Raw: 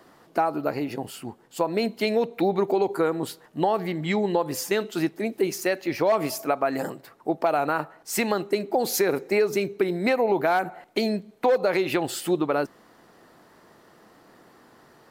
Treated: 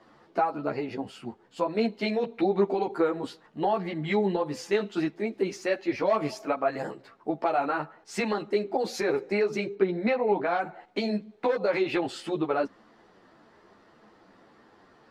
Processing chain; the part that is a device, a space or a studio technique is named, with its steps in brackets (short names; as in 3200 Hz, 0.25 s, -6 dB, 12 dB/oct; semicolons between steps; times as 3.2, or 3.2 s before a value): 9.74–10.6 air absorption 120 m; string-machine ensemble chorus (ensemble effect; LPF 4700 Hz 12 dB/oct)